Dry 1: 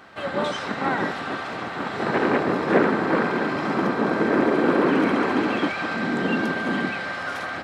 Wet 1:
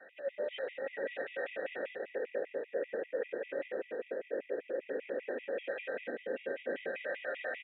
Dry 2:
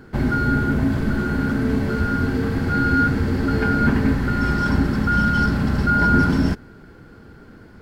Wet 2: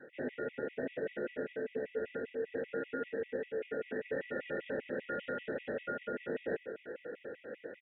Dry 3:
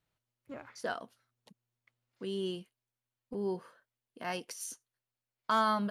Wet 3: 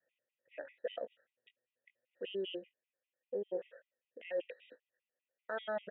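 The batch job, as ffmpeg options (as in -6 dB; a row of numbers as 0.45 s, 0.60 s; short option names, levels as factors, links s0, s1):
-filter_complex "[0:a]adynamicequalizer=threshold=0.0178:dfrequency=440:dqfactor=2.4:tfrequency=440:tqfactor=2.4:attack=5:release=100:ratio=0.375:range=3:mode=boostabove:tftype=bell,highpass=f=240:p=1,asplit=2[s0][s1];[s1]adelay=20,volume=0.335[s2];[s0][s2]amix=inputs=2:normalize=0,acontrast=64,aresample=8000,aresample=44100,asplit=3[s3][s4][s5];[s3]bandpass=f=530:t=q:w=8,volume=1[s6];[s4]bandpass=f=1840:t=q:w=8,volume=0.501[s7];[s5]bandpass=f=2480:t=q:w=8,volume=0.355[s8];[s6][s7][s8]amix=inputs=3:normalize=0,areverse,acompressor=threshold=0.00708:ratio=10,areverse,afftfilt=real='re*gt(sin(2*PI*5.1*pts/sr)*(1-2*mod(floor(b*sr/1024/1900),2)),0)':imag='im*gt(sin(2*PI*5.1*pts/sr)*(1-2*mod(floor(b*sr/1024/1900),2)),0)':win_size=1024:overlap=0.75,volume=3.16"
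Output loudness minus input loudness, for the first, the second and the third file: -16.0 LU, -20.0 LU, -6.5 LU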